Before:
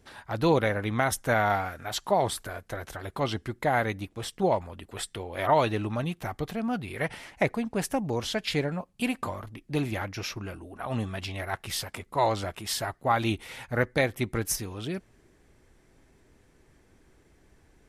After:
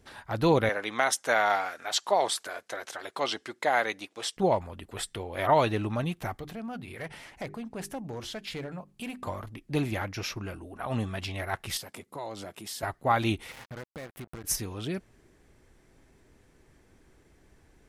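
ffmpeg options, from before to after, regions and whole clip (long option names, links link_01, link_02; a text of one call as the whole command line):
ffmpeg -i in.wav -filter_complex "[0:a]asettb=1/sr,asplit=3[link_01][link_02][link_03];[link_01]atrim=end=0.694[link_04];[link_02]atrim=start=0.69:end=4.37,asetpts=PTS-STARTPTS,afade=type=in:duration=0.004:curve=qsin,afade=type=out:start_time=3.676:duration=0.004:curve=qsin,highpass=400,lowpass=6500,highshelf=frequency=4200:gain=11.5[link_05];[link_03]atrim=start=4.366[link_06];[link_04][link_05]acrossfade=duration=0.004:curve1=hsin:curve2=qsin[link_07];[link_07][link_06]acrossfade=duration=0.004:curve1=qsin:curve2=hsin,asettb=1/sr,asplit=3[link_08][link_09][link_10];[link_08]atrim=end=6.374[link_11];[link_09]atrim=start=6.37:end=9.27,asetpts=PTS-STARTPTS,afade=type=in:duration=0.004:curve=qsin,afade=type=out:start_time=2.896:duration=0.004:curve=qsin,bandreject=frequency=50:width_type=h:width=6,bandreject=frequency=100:width_type=h:width=6,bandreject=frequency=150:width_type=h:width=6,bandreject=frequency=200:width_type=h:width=6,bandreject=frequency=250:width_type=h:width=6,bandreject=frequency=300:width_type=h:width=6,bandreject=frequency=350:width_type=h:width=6,bandreject=frequency=400:width_type=h:width=6,acompressor=threshold=-47dB:ratio=1.5:attack=3.2:release=140:knee=1:detection=peak,asoftclip=type=hard:threshold=-31dB[link_12];[link_10]atrim=start=9.266[link_13];[link_11][link_12]acrossfade=duration=0.004:curve1=hsin:curve2=qsin[link_14];[link_14][link_13]acrossfade=duration=0.004:curve1=qsin:curve2=hsin,asettb=1/sr,asplit=3[link_15][link_16][link_17];[link_15]atrim=end=11.774[link_18];[link_16]atrim=start=11.77:end=12.83,asetpts=PTS-STARTPTS,afade=type=in:duration=0.004:curve=qsin,afade=type=out:start_time=1.056:duration=0.004:curve=qsin,highpass=180,equalizer=frequency=1500:width=0.44:gain=-7,acompressor=threshold=-37dB:ratio=2.5:attack=3.2:release=140:knee=1:detection=peak[link_19];[link_17]atrim=start=12.826[link_20];[link_18][link_19]acrossfade=duration=0.004:curve1=hsin:curve2=qsin[link_21];[link_21][link_20]acrossfade=duration=0.004:curve1=qsin:curve2=hsin,asettb=1/sr,asplit=3[link_22][link_23][link_24];[link_22]atrim=end=13.514[link_25];[link_23]atrim=start=13.51:end=14.44,asetpts=PTS-STARTPTS,afade=type=in:duration=0.004:curve=qsin,afade=type=out:start_time=0.926:duration=0.004:curve=qsin,equalizer=frequency=5500:width=0.83:gain=-15,acompressor=threshold=-41dB:ratio=4:attack=3.2:release=140:knee=1:detection=peak,acrusher=bits=6:mix=0:aa=0.5[link_26];[link_24]atrim=start=14.436[link_27];[link_25][link_26]acrossfade=duration=0.004:curve1=hsin:curve2=qsin[link_28];[link_28][link_27]acrossfade=duration=0.004:curve1=qsin:curve2=hsin" out.wav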